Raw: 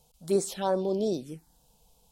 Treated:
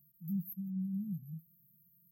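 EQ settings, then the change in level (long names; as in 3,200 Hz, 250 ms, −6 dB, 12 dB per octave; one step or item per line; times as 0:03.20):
high-pass filter 150 Hz 24 dB per octave
linear-phase brick-wall band-stop 210–12,000 Hz
parametric band 270 Hz −8 dB 1.2 octaves
+6.5 dB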